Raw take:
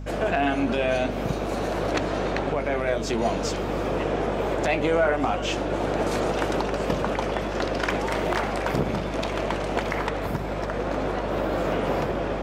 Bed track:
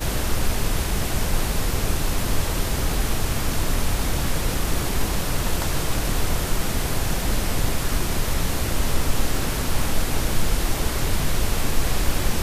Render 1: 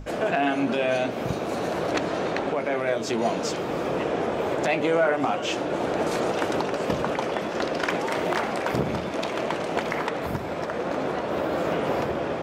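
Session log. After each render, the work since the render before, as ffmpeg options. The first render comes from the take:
ffmpeg -i in.wav -af "bandreject=frequency=50:width_type=h:width=6,bandreject=frequency=100:width_type=h:width=6,bandreject=frequency=150:width_type=h:width=6,bandreject=frequency=200:width_type=h:width=6,bandreject=frequency=250:width_type=h:width=6" out.wav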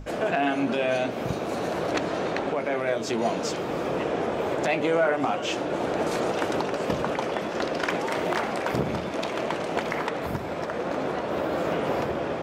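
ffmpeg -i in.wav -af "volume=-1dB" out.wav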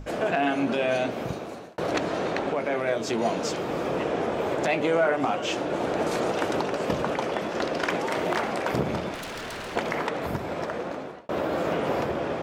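ffmpeg -i in.wav -filter_complex "[0:a]asettb=1/sr,asplit=3[link_01][link_02][link_03];[link_01]atrim=end=9.144[link_04];[link_02]atrim=start=9.14:end=9.76,asetpts=PTS-STARTPTS,afade=type=in:duration=0.004:curve=qsin,afade=type=out:start_time=0.616:duration=0.004:curve=qsin,aeval=exprs='0.0299*(abs(mod(val(0)/0.0299+3,4)-2)-1)':channel_layout=same[link_05];[link_03]atrim=start=9.756[link_06];[link_04][link_05]acrossfade=duration=0.004:curve1=hsin:curve2=qsin[link_07];[link_07][link_06]acrossfade=duration=0.004:curve1=qsin:curve2=hsin,asplit=3[link_08][link_09][link_10];[link_08]atrim=end=1.78,asetpts=PTS-STARTPTS,afade=type=out:start_time=1.11:duration=0.67[link_11];[link_09]atrim=start=1.78:end=11.29,asetpts=PTS-STARTPTS,afade=type=in:duration=0.004:curve=hsin,afade=type=out:start_time=8.89:duration=0.62[link_12];[link_10]atrim=start=11.29,asetpts=PTS-STARTPTS,afade=type=in:duration=0.004:curve=hsin[link_13];[link_11][link_12][link_13]concat=n=3:v=0:a=1" out.wav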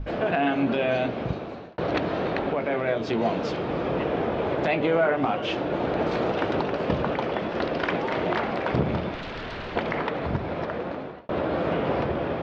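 ffmpeg -i in.wav -af "lowpass=frequency=4200:width=0.5412,lowpass=frequency=4200:width=1.3066,lowshelf=frequency=140:gain=9" out.wav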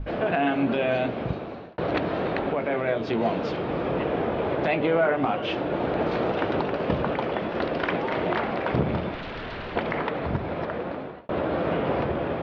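ffmpeg -i in.wav -af "lowpass=4400" out.wav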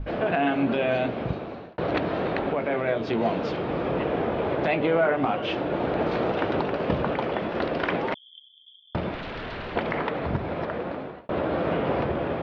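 ffmpeg -i in.wav -filter_complex "[0:a]asettb=1/sr,asplit=3[link_01][link_02][link_03];[link_01]atrim=end=8.144[link_04];[link_02]atrim=start=8.14:end=8.95,asetpts=PTS-STARTPTS,afade=type=in:duration=0.004:curve=qsin,afade=type=out:start_time=0.806:duration=0.004:curve=qsin,asuperpass=centerf=3300:order=12:qfactor=8[link_05];[link_03]atrim=start=8.946[link_06];[link_04][link_05]acrossfade=duration=0.004:curve1=hsin:curve2=qsin[link_07];[link_07][link_06]acrossfade=duration=0.004:curve1=qsin:curve2=hsin" out.wav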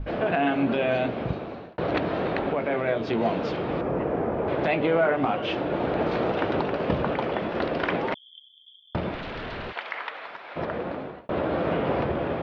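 ffmpeg -i in.wav -filter_complex "[0:a]asettb=1/sr,asplit=3[link_01][link_02][link_03];[link_01]atrim=end=3.814[link_04];[link_02]atrim=start=3.81:end=4.48,asetpts=PTS-STARTPTS,afade=type=in:duration=0.004:curve=qsin,afade=type=out:start_time=0.666:duration=0.004:curve=qsin,equalizer=frequency=3700:width_type=o:width=1.4:gain=-14.5[link_05];[link_03]atrim=start=4.476[link_06];[link_04][link_05]acrossfade=duration=0.004:curve1=hsin:curve2=qsin[link_07];[link_07][link_06]acrossfade=duration=0.004:curve1=qsin:curve2=hsin,asplit=3[link_08][link_09][link_10];[link_08]afade=type=out:start_time=9.71:duration=0.02[link_11];[link_09]highpass=1200,afade=type=in:start_time=9.71:duration=0.02,afade=type=out:start_time=10.55:duration=0.02[link_12];[link_10]afade=type=in:start_time=10.55:duration=0.02[link_13];[link_11][link_12][link_13]amix=inputs=3:normalize=0" out.wav

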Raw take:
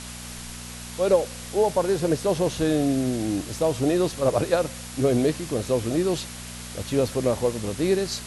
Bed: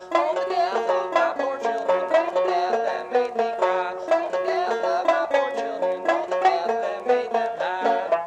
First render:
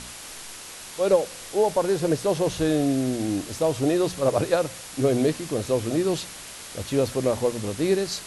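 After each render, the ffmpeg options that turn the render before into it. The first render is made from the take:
ffmpeg -i in.wav -af "bandreject=frequency=60:width_type=h:width=4,bandreject=frequency=120:width_type=h:width=4,bandreject=frequency=180:width_type=h:width=4,bandreject=frequency=240:width_type=h:width=4" out.wav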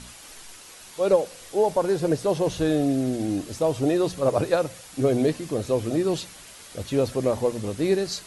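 ffmpeg -i in.wav -af "afftdn=noise_reduction=7:noise_floor=-40" out.wav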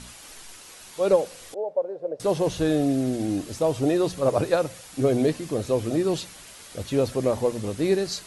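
ffmpeg -i in.wav -filter_complex "[0:a]asettb=1/sr,asplit=3[link_01][link_02][link_03];[link_01]atrim=end=1.544[link_04];[link_02]atrim=start=1.54:end=2.2,asetpts=PTS-STARTPTS,afade=type=in:duration=0.004:curve=qsin,afade=type=out:start_time=0.656:duration=0.004:curve=qsin,bandpass=frequency=560:width_type=q:width=5.3[link_05];[link_03]atrim=start=2.196[link_06];[link_04][link_05]acrossfade=duration=0.004:curve1=hsin:curve2=qsin[link_07];[link_07][link_06]acrossfade=duration=0.004:curve1=qsin:curve2=hsin" out.wav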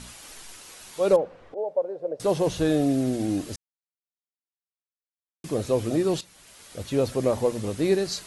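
ffmpeg -i in.wav -filter_complex "[0:a]asettb=1/sr,asplit=3[link_01][link_02][link_03];[link_01]atrim=end=1.164[link_04];[link_02]atrim=start=1.16:end=1.58,asetpts=PTS-STARTPTS,afade=type=in:duration=0.004:curve=qsin,afade=type=out:start_time=0.416:duration=0.004:curve=qsin,lowpass=1300[link_05];[link_03]atrim=start=1.576[link_06];[link_04][link_05]acrossfade=duration=0.004:curve1=hsin:curve2=qsin[link_07];[link_07][link_06]acrossfade=duration=0.004:curve1=qsin:curve2=hsin,asplit=4[link_08][link_09][link_10][link_11];[link_08]atrim=end=3.56,asetpts=PTS-STARTPTS,afade=type=out:start_time=3.556:duration=0.004:curve=hsin[link_12];[link_09]atrim=start=3.56:end=5.44,asetpts=PTS-STARTPTS,volume=0[link_13];[link_10]atrim=start=5.44:end=6.21,asetpts=PTS-STARTPTS,afade=type=in:duration=0.004:curve=hsin,afade=type=out:start_time=0.766:duration=0.004:curve=hsin:silence=0.211349[link_14];[link_11]atrim=start=6.21,asetpts=PTS-STARTPTS,afade=type=in:duration=1.16:curve=qsin:silence=0.211349[link_15];[link_12][link_13][link_14][link_15]concat=n=4:v=0:a=1" out.wav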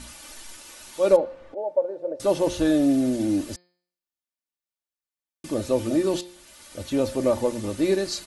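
ffmpeg -i in.wav -af "aecho=1:1:3.4:0.56,bandreject=frequency=177.7:width_type=h:width=4,bandreject=frequency=355.4:width_type=h:width=4,bandreject=frequency=533.1:width_type=h:width=4,bandreject=frequency=710.8:width_type=h:width=4,bandreject=frequency=888.5:width_type=h:width=4,bandreject=frequency=1066.2:width_type=h:width=4,bandreject=frequency=1243.9:width_type=h:width=4,bandreject=frequency=1421.6:width_type=h:width=4,bandreject=frequency=1599.3:width_type=h:width=4,bandreject=frequency=1777:width_type=h:width=4,bandreject=frequency=1954.7:width_type=h:width=4,bandreject=frequency=2132.4:width_type=h:width=4,bandreject=frequency=2310.1:width_type=h:width=4,bandreject=frequency=2487.8:width_type=h:width=4,bandreject=frequency=2665.5:width_type=h:width=4,bandreject=frequency=2843.2:width_type=h:width=4,bandreject=frequency=3020.9:width_type=h:width=4,bandreject=frequency=3198.6:width_type=h:width=4,bandreject=frequency=3376.3:width_type=h:width=4,bandreject=frequency=3554:width_type=h:width=4,bandreject=frequency=3731.7:width_type=h:width=4,bandreject=frequency=3909.4:width_type=h:width=4,bandreject=frequency=4087.1:width_type=h:width=4,bandreject=frequency=4264.8:width_type=h:width=4,bandreject=frequency=4442.5:width_type=h:width=4,bandreject=frequency=4620.2:width_type=h:width=4,bandreject=frequency=4797.9:width_type=h:width=4,bandreject=frequency=4975.6:width_type=h:width=4" out.wav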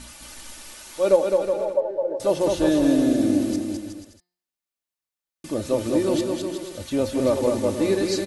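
ffmpeg -i in.wav -af "aecho=1:1:210|367.5|485.6|574.2|640.7:0.631|0.398|0.251|0.158|0.1" out.wav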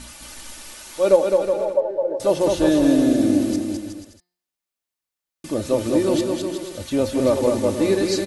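ffmpeg -i in.wav -af "volume=2.5dB" out.wav

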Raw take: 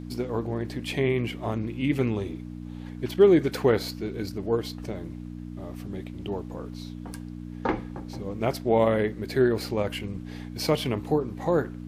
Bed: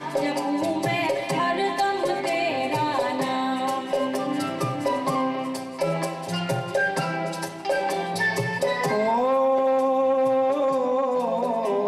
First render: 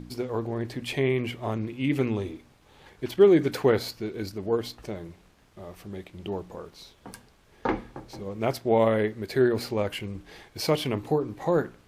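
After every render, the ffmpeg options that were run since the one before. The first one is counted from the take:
ffmpeg -i in.wav -af "bandreject=frequency=60:width_type=h:width=4,bandreject=frequency=120:width_type=h:width=4,bandreject=frequency=180:width_type=h:width=4,bandreject=frequency=240:width_type=h:width=4,bandreject=frequency=300:width_type=h:width=4" out.wav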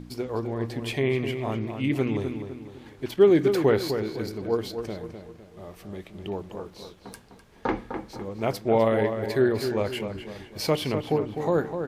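ffmpeg -i in.wav -filter_complex "[0:a]asplit=2[link_01][link_02];[link_02]adelay=253,lowpass=frequency=2900:poles=1,volume=-7.5dB,asplit=2[link_03][link_04];[link_04]adelay=253,lowpass=frequency=2900:poles=1,volume=0.43,asplit=2[link_05][link_06];[link_06]adelay=253,lowpass=frequency=2900:poles=1,volume=0.43,asplit=2[link_07][link_08];[link_08]adelay=253,lowpass=frequency=2900:poles=1,volume=0.43,asplit=2[link_09][link_10];[link_10]adelay=253,lowpass=frequency=2900:poles=1,volume=0.43[link_11];[link_01][link_03][link_05][link_07][link_09][link_11]amix=inputs=6:normalize=0" out.wav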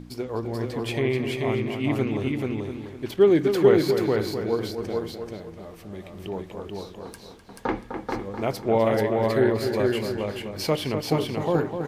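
ffmpeg -i in.wav -af "aecho=1:1:434:0.708" out.wav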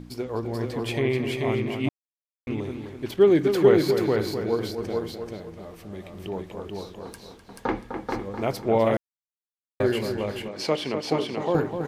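ffmpeg -i in.wav -filter_complex "[0:a]asettb=1/sr,asplit=3[link_01][link_02][link_03];[link_01]atrim=end=10.484[link_04];[link_02]atrim=start=10.48:end=11.55,asetpts=PTS-STARTPTS,afade=type=in:duration=0.004:curve=qsin,afade=type=out:start_time=1.066:duration=0.004:curve=qsin,highpass=210,lowpass=7200[link_05];[link_03]atrim=start=11.546[link_06];[link_04][link_05]acrossfade=duration=0.004:curve1=hsin:curve2=qsin[link_07];[link_07][link_06]acrossfade=duration=0.004:curve1=qsin:curve2=hsin,asplit=5[link_08][link_09][link_10][link_11][link_12];[link_08]atrim=end=1.89,asetpts=PTS-STARTPTS,afade=type=out:start_time=1.886:duration=0.004:curve=hsin[link_13];[link_09]atrim=start=1.89:end=2.47,asetpts=PTS-STARTPTS,volume=0[link_14];[link_10]atrim=start=2.47:end=8.97,asetpts=PTS-STARTPTS,afade=type=in:duration=0.004:curve=hsin,afade=type=out:start_time=6.496:duration=0.004:curve=hsin[link_15];[link_11]atrim=start=8.97:end=9.8,asetpts=PTS-STARTPTS,volume=0[link_16];[link_12]atrim=start=9.8,asetpts=PTS-STARTPTS,afade=type=in:duration=0.004:curve=hsin[link_17];[link_13][link_14][link_15][link_16][link_17]concat=n=5:v=0:a=1" out.wav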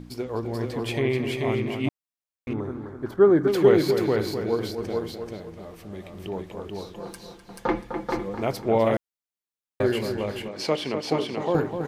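ffmpeg -i in.wav -filter_complex "[0:a]asettb=1/sr,asplit=3[link_01][link_02][link_03];[link_01]atrim=end=2.534[link_04];[link_02]atrim=start=2.53:end=3.48,asetpts=PTS-STARTPTS,afade=type=in:duration=0.004:curve=qsin,afade=type=out:start_time=0.946:duration=0.004:curve=qsin,highshelf=frequency=1900:width_type=q:width=3:gain=-10.5[link_05];[link_03]atrim=start=3.476[link_06];[link_04][link_05]acrossfade=duration=0.004:curve1=hsin:curve2=qsin[link_07];[link_07][link_06]acrossfade=duration=0.004:curve1=qsin:curve2=hsin,asettb=1/sr,asplit=3[link_08][link_09][link_10];[link_08]atrim=end=6.944[link_11];[link_09]atrim=start=6.94:end=8.35,asetpts=PTS-STARTPTS,afade=type=in:duration=0.004:curve=qsin,afade=type=out:start_time=1.406:duration=0.004:curve=qsin,aecho=1:1:5.8:0.69,atrim=end_sample=62181[link_12];[link_10]atrim=start=8.346[link_13];[link_11][link_12]acrossfade=duration=0.004:curve1=hsin:curve2=qsin[link_14];[link_14][link_13]acrossfade=duration=0.004:curve1=qsin:curve2=hsin" out.wav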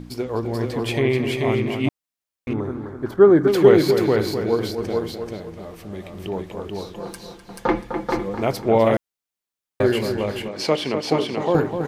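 ffmpeg -i in.wav -af "volume=4.5dB" out.wav

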